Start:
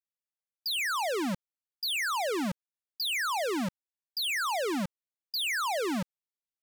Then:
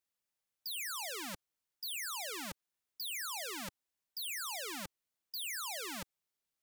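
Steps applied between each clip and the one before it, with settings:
every bin compressed towards the loudest bin 2 to 1
level +2.5 dB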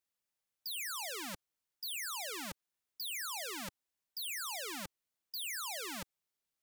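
no processing that can be heard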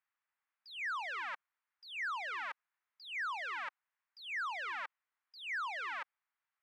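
flat-topped band-pass 1,400 Hz, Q 1.1
level +8 dB

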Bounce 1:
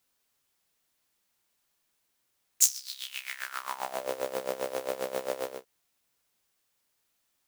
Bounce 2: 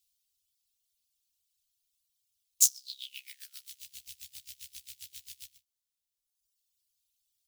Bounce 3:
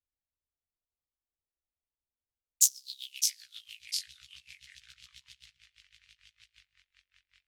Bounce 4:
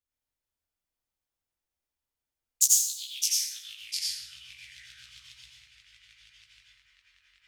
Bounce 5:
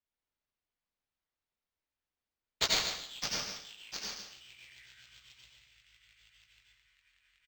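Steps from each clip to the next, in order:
reverb reduction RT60 1.7 s; inverse Chebyshev band-stop filter 340–850 Hz, stop band 80 dB
low-pass that shuts in the quiet parts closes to 860 Hz, open at −38.5 dBFS; delay with pitch and tempo change per echo 115 ms, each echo −3 semitones, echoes 2, each echo −6 dB
convolution reverb RT60 0.85 s, pre-delay 73 ms, DRR −4 dB
on a send: single-tap delay 144 ms −8.5 dB; on the sum: linearly interpolated sample-rate reduction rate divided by 4×; level −5.5 dB

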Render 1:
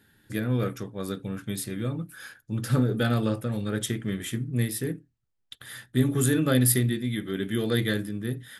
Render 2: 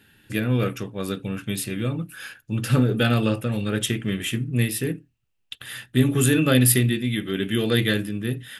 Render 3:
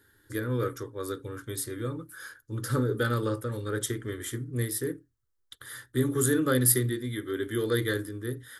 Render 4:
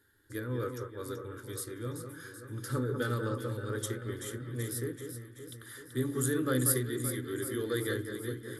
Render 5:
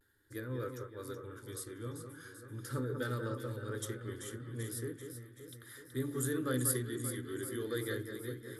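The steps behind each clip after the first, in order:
parametric band 2,700 Hz +13 dB 0.34 octaves; level +4 dB
phaser with its sweep stopped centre 710 Hz, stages 6; level −2.5 dB
delay that swaps between a low-pass and a high-pass 191 ms, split 1,800 Hz, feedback 76%, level −6.5 dB; level −6 dB
pitch vibrato 0.39 Hz 35 cents; level −4.5 dB

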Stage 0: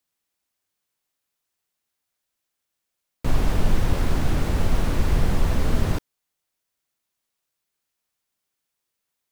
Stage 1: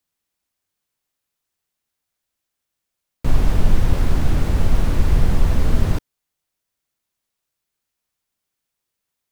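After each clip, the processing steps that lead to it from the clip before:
low-shelf EQ 170 Hz +5.5 dB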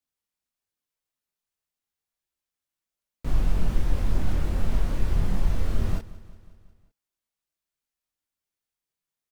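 multi-voice chorus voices 4, 0.29 Hz, delay 24 ms, depth 3.3 ms
repeating echo 181 ms, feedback 60%, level −18.5 dB
level −6 dB

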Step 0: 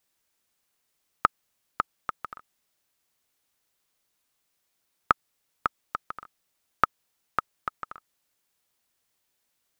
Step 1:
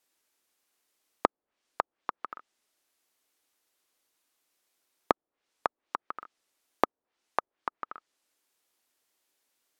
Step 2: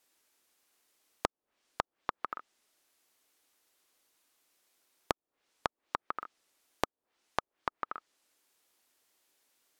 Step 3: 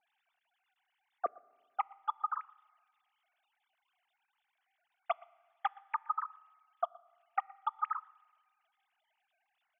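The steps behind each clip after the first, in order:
treble cut that deepens with the level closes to 700 Hz, closed at −31.5 dBFS; low shelf with overshoot 210 Hz −9 dB, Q 1.5
downward compressor, threshold −32 dBFS, peak gain reduction 14.5 dB; level +3.5 dB
three sine waves on the formant tracks; single-tap delay 119 ms −24 dB; on a send at −22.5 dB: convolution reverb RT60 1.7 s, pre-delay 4 ms; on the sum: level +1 dB

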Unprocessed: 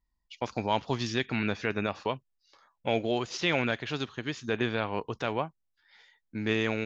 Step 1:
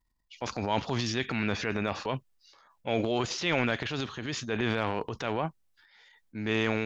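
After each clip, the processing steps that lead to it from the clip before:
transient designer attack −4 dB, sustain +9 dB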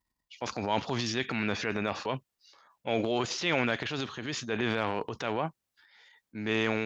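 high-pass filter 130 Hz 6 dB per octave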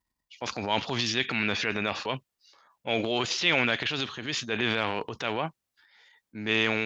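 dynamic equaliser 3,100 Hz, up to +8 dB, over −46 dBFS, Q 0.82

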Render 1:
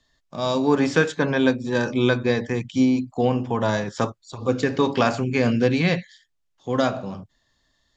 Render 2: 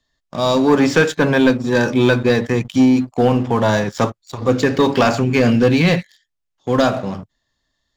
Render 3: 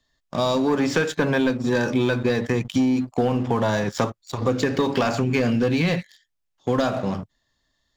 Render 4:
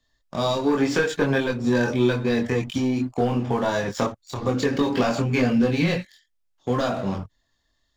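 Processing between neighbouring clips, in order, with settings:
leveller curve on the samples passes 2
downward compressor, threshold −18 dBFS, peak gain reduction 9 dB
multi-voice chorus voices 6, 0.77 Hz, delay 23 ms, depth 2.3 ms; level +2 dB

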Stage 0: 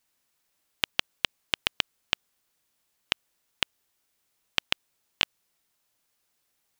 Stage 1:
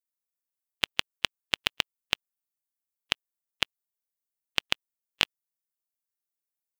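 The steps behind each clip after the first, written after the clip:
spectral dynamics exaggerated over time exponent 1.5
level +1 dB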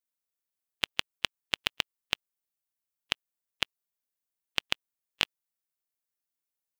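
brickwall limiter −4 dBFS, peak gain reduction 3 dB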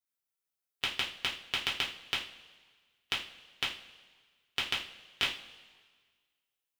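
coupled-rooms reverb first 0.35 s, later 1.6 s, from −18 dB, DRR −5.5 dB
level −7 dB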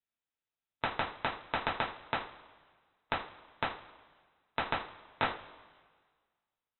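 voice inversion scrambler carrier 3,900 Hz

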